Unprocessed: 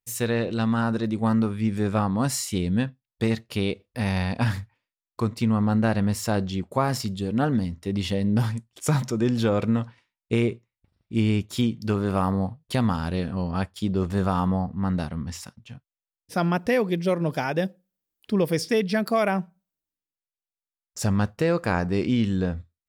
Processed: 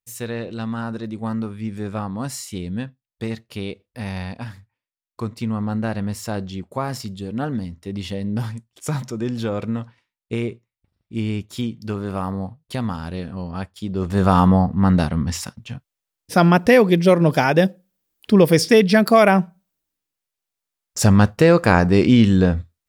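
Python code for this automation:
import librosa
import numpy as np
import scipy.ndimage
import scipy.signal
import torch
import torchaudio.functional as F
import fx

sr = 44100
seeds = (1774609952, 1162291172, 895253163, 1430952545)

y = fx.gain(x, sr, db=fx.line((4.29, -3.5), (4.56, -13.0), (5.21, -2.0), (13.88, -2.0), (14.33, 9.5)))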